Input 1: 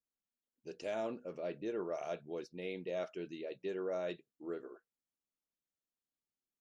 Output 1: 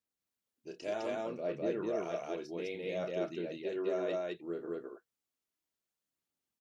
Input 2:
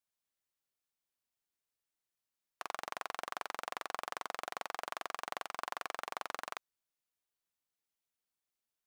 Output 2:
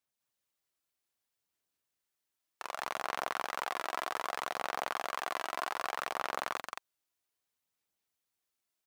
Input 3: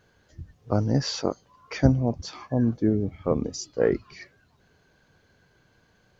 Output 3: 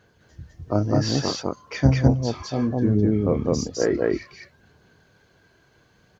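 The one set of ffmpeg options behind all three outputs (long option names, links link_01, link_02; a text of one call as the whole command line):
ffmpeg -i in.wav -af "highpass=51,aphaser=in_gain=1:out_gain=1:delay=3.1:decay=0.34:speed=0.64:type=sinusoidal,aecho=1:1:29.15|207:0.447|1" out.wav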